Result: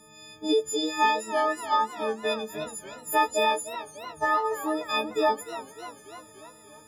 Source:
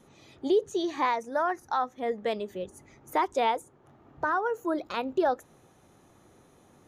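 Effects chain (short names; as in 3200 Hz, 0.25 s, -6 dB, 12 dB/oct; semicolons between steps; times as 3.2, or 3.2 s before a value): frequency quantiser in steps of 6 st; warbling echo 0.295 s, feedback 63%, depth 150 cents, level -14 dB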